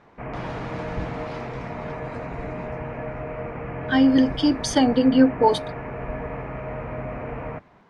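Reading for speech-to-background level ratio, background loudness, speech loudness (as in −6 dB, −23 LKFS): 13.0 dB, −32.5 LKFS, −19.5 LKFS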